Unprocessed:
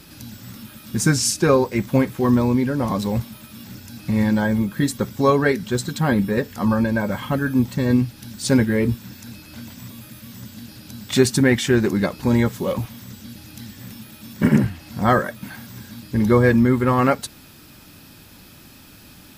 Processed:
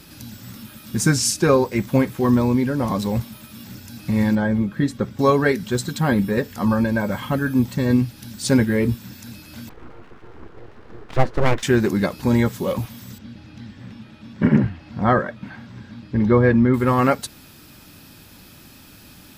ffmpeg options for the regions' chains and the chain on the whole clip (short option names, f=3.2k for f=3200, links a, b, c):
-filter_complex "[0:a]asettb=1/sr,asplit=3[a][b][c];[a]atrim=end=4.354[d];[b]atrim=start=4.35:end=5.19,asetpts=PTS-STARTPTS,afade=t=in:d=0.004:c=qsin,afade=t=out:st=0.836:d=0.004:c=qsin,aemphasis=mode=reproduction:type=75kf,bandreject=f=930:w=11[e];[c]atrim=start=5.186[f];[d][e]acrossfade=d=0.004:c1=hsin:c2=qsin[g];[g][f]acrossfade=d=0.004:c1=qsin:c2=hsin,asettb=1/sr,asplit=3[h][i][j];[h]atrim=end=9.694[k];[i]atrim=start=9.69:end=11.63,asetpts=PTS-STARTPTS,afade=t=in:d=0.004:c=qsin,afade=t=out:st=1.936:d=0.004:c=qsin,lowpass=f=1.2k:t=q:w=2.2,aeval=exprs='abs(val(0))':c=same[l];[j]atrim=start=11.626[m];[k][l]acrossfade=d=0.004:c1=hsin:c2=qsin[n];[n][m]acrossfade=d=0.004:c1=qsin:c2=hsin,asettb=1/sr,asplit=3[o][p][q];[o]atrim=end=13.184[r];[p]atrim=start=13.18:end=16.74,asetpts=PTS-STARTPTS,afade=t=in:d=0.004:c=qsin,afade=t=out:st=3.556:d=0.004:c=qsin,lowpass=4.3k,highshelf=f=3.3k:g=-8.5[s];[q]atrim=start=16.736[t];[r][s]acrossfade=d=0.004:c1=hsin:c2=qsin[u];[u][t]acrossfade=d=0.004:c1=qsin:c2=hsin"